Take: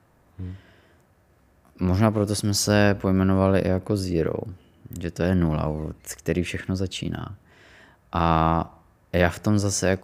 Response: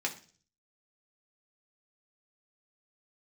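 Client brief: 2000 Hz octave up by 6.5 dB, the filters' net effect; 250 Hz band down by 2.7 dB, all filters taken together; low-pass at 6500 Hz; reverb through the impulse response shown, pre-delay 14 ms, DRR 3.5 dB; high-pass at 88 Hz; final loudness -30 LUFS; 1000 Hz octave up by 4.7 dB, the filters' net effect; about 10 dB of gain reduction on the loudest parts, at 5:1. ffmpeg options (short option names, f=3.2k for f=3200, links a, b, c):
-filter_complex "[0:a]highpass=88,lowpass=6.5k,equalizer=f=250:t=o:g=-4,equalizer=f=1k:t=o:g=4.5,equalizer=f=2k:t=o:g=7,acompressor=threshold=-22dB:ratio=5,asplit=2[a][b];[1:a]atrim=start_sample=2205,adelay=14[c];[b][c]afir=irnorm=-1:irlink=0,volume=-8.5dB[d];[a][d]amix=inputs=2:normalize=0,volume=-2dB"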